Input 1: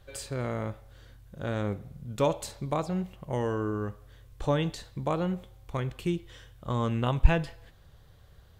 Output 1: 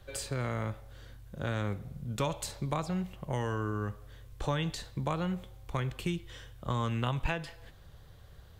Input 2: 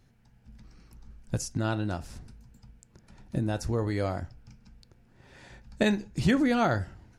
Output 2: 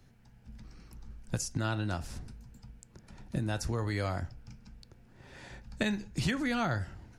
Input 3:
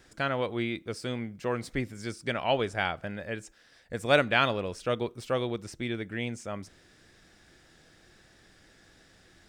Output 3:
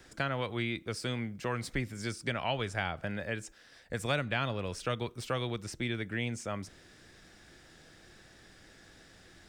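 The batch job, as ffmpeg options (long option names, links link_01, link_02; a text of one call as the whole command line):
ffmpeg -i in.wav -filter_complex "[0:a]acrossover=split=170|940[link_01][link_02][link_03];[link_01]acompressor=threshold=-35dB:ratio=4[link_04];[link_02]acompressor=threshold=-39dB:ratio=4[link_05];[link_03]acompressor=threshold=-35dB:ratio=4[link_06];[link_04][link_05][link_06]amix=inputs=3:normalize=0,volume=2dB" out.wav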